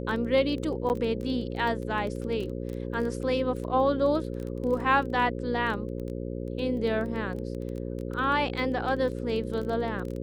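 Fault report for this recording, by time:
buzz 60 Hz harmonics 9 -34 dBFS
crackle 15/s -33 dBFS
0.89–0.9 gap 9.2 ms

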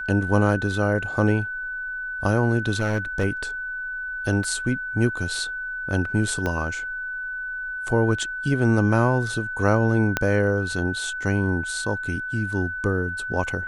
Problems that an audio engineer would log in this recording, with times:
tone 1500 Hz -28 dBFS
2.79–3.25 clipped -17 dBFS
4.44 gap 2.9 ms
6.46 pop -13 dBFS
10.17 pop -6 dBFS

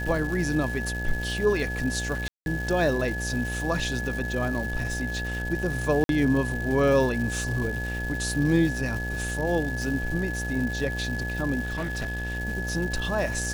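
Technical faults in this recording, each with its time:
buzz 60 Hz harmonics 15 -32 dBFS
crackle 470/s -33 dBFS
tone 1700 Hz -32 dBFS
2.28–2.46 gap 0.181 s
6.04–6.09 gap 52 ms
11.63–12.37 clipped -26 dBFS

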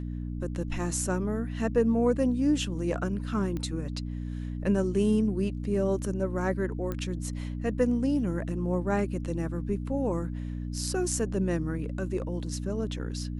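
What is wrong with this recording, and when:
hum 60 Hz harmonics 5 -34 dBFS
3.57 pop -22 dBFS
6.92 pop -20 dBFS

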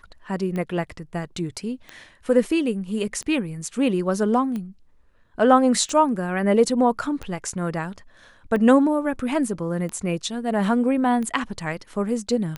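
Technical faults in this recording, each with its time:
tick 45 rpm -19 dBFS

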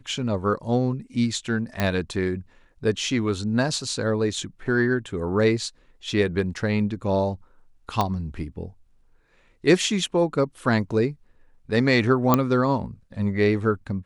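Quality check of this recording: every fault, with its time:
1.8 pop -9 dBFS
8.01 pop -9 dBFS
12.34 pop -4 dBFS

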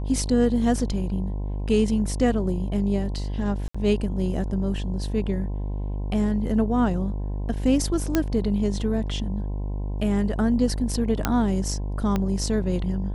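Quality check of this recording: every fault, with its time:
buzz 50 Hz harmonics 21 -28 dBFS
3.68–3.75 gap 65 ms
8.15 pop -7 dBFS
11.25 pop -6 dBFS
12.16 pop -12 dBFS

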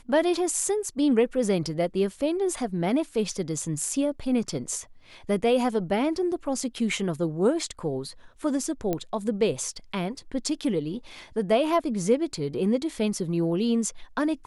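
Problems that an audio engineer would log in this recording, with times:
8.93 pop -14 dBFS

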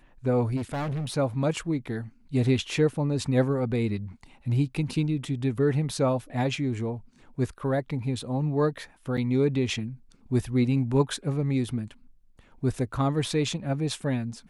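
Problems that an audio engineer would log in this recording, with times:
0.56–1.14 clipped -27.5 dBFS
9.17–9.18 gap 6 ms

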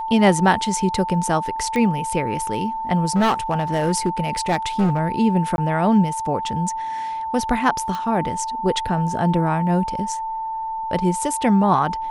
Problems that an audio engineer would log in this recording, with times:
tone 890 Hz -24 dBFS
1.76 pop -12 dBFS
3.15–4.99 clipped -14 dBFS
5.56–5.58 gap 21 ms
7.95 pop -15 dBFS

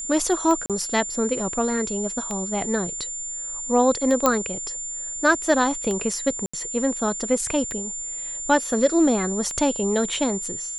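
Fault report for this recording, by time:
tick 33 1/3 rpm -15 dBFS
tone 7200 Hz -29 dBFS
0.66–0.7 gap 37 ms
4.26 pop -4 dBFS
6.46–6.54 gap 75 ms

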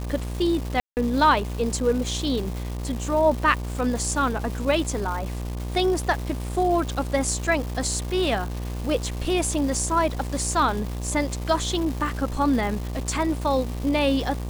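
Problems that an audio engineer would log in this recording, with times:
buzz 60 Hz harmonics 20 -30 dBFS
crackle 580/s -31 dBFS
0.8–0.97 gap 0.169 s

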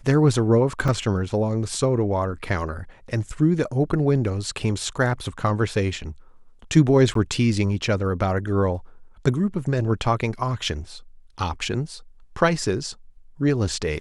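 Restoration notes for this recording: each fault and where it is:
0.88 gap 3.2 ms
7.14–7.15 gap 13 ms

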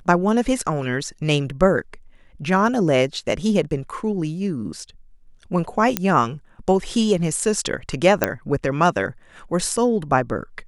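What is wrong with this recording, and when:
5.97 pop -2 dBFS
8.24 pop -2 dBFS

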